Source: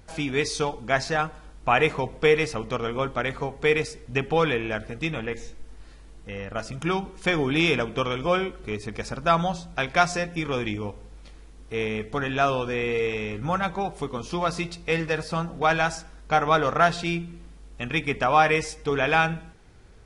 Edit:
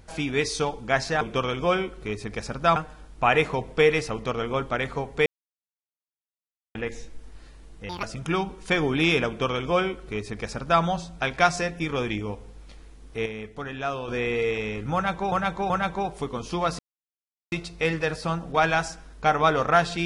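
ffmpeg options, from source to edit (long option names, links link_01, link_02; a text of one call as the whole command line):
ffmpeg -i in.wav -filter_complex "[0:a]asplit=12[link_01][link_02][link_03][link_04][link_05][link_06][link_07][link_08][link_09][link_10][link_11][link_12];[link_01]atrim=end=1.212[link_13];[link_02]atrim=start=7.828:end=9.382[link_14];[link_03]atrim=start=1.208:end=3.71,asetpts=PTS-STARTPTS,afade=type=out:start_time=2.498:duration=0.004:curve=hsin[link_15];[link_04]atrim=start=3.71:end=5.2,asetpts=PTS-STARTPTS,volume=0[link_16];[link_05]atrim=start=5.2:end=6.344,asetpts=PTS-STARTPTS,afade=type=in:duration=0.004:curve=hsin[link_17];[link_06]atrim=start=6.34:end=6.59,asetpts=PTS-STARTPTS,asetrate=79380,aresample=44100[link_18];[link_07]atrim=start=6.586:end=11.822[link_19];[link_08]atrim=start=11.818:end=12.642,asetpts=PTS-STARTPTS,volume=-7dB[link_20];[link_09]atrim=start=12.638:end=13.882[link_21];[link_10]atrim=start=13.498:end=13.882[link_22];[link_11]atrim=start=13.498:end=14.59,asetpts=PTS-STARTPTS,afade=type=out:start_time=1.088:duration=0.004:curve=hsin,apad=pad_dur=0.73[link_23];[link_12]atrim=start=14.59,asetpts=PTS-STARTPTS,afade=type=in:duration=0.004:curve=hsin[link_24];[link_13][link_14]acrossfade=duration=0.004:curve1=hsin:curve2=hsin[link_25];[link_15][link_16][link_17]concat=n=3:v=0:a=1[link_26];[link_25][link_26]acrossfade=duration=0.004:curve1=hsin:curve2=hsin[link_27];[link_27][link_18]acrossfade=duration=0.004:curve1=hsin:curve2=hsin[link_28];[link_28][link_19]acrossfade=duration=0.004:curve1=hsin:curve2=hsin[link_29];[link_29][link_20]acrossfade=duration=0.004:curve1=hsin:curve2=hsin[link_30];[link_30][link_21]acrossfade=duration=0.004:curve1=hsin:curve2=hsin[link_31];[link_31][link_22]acrossfade=duration=0.004:curve1=hsin:curve2=hsin[link_32];[link_23][link_24]concat=n=2:v=0:a=1[link_33];[link_32][link_33]acrossfade=duration=0.004:curve1=hsin:curve2=hsin" out.wav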